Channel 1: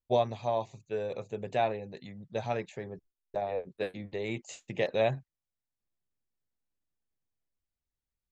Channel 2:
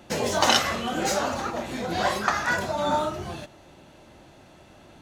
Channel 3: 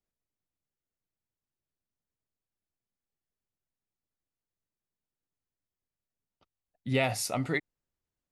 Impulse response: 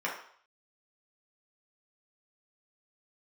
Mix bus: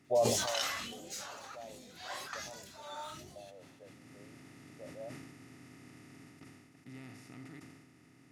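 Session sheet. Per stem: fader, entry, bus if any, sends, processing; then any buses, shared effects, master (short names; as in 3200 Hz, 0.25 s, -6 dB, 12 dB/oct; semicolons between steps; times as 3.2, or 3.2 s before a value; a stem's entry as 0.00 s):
-5.5 dB, 0.00 s, no send, LPF 1100 Hz; bell 590 Hz +11 dB 0.54 oct; auto duck -21 dB, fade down 0.95 s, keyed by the third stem
-19.5 dB, 0.05 s, no send, phaser stages 2, 1.3 Hz, lowest notch 140–1600 Hz
3.76 s -21 dB -> 4.11 s -10 dB -> 6.21 s -10 dB -> 6.63 s -18 dB, 0.00 s, no send, per-bin compression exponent 0.2; EQ curve 310 Hz 0 dB, 560 Hz -23 dB, 1200 Hz -9 dB, 2700 Hz -18 dB, 5400 Hz -19 dB, 10000 Hz -23 dB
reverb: off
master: tilt +2 dB/oct; sustainer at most 40 dB/s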